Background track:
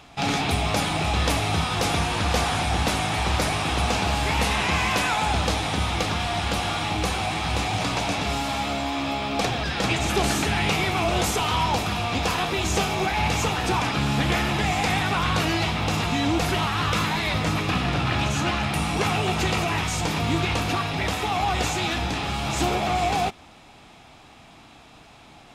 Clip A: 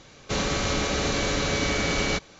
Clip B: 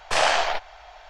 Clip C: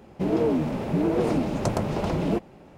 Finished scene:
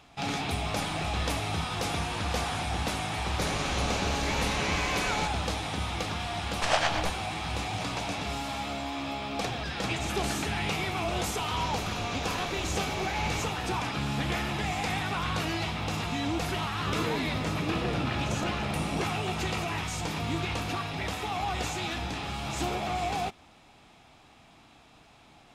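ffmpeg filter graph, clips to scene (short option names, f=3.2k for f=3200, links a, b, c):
-filter_complex "[2:a]asplit=2[a][b];[1:a]asplit=2[c][d];[0:a]volume=-7.5dB[e];[a]acompressor=threshold=-38dB:ratio=6:attack=3.2:release=140:knee=1:detection=peak[f];[b]tremolo=f=8.7:d=0.65[g];[f]atrim=end=1.09,asetpts=PTS-STARTPTS,volume=-2.5dB,afade=t=in:d=0.004:c=hsin,afade=t=out:st=1.086:d=0.004:c=hsin,adelay=660[h];[c]atrim=end=2.39,asetpts=PTS-STARTPTS,volume=-8dB,afade=t=in:d=0.004:c=hsin,afade=t=out:st=2.386:d=0.004:c=hsin,adelay=136269S[i];[g]atrim=end=1.09,asetpts=PTS-STARTPTS,volume=-3.5dB,afade=t=in:d=0.004:c=hsin,afade=t=out:st=1.086:d=0.004:c=hsin,adelay=6510[j];[d]atrim=end=2.39,asetpts=PTS-STARTPTS,volume=-13.5dB,afade=t=in:d=0.004:c=hsin,afade=t=out:st=2.386:d=0.004:c=hsin,adelay=11260[k];[3:a]atrim=end=2.77,asetpts=PTS-STARTPTS,volume=-10.5dB,afade=t=in:d=0.004:c=hsin,afade=t=out:st=2.766:d=0.004:c=hsin,adelay=16660[l];[e][h][i][j][k][l]amix=inputs=6:normalize=0"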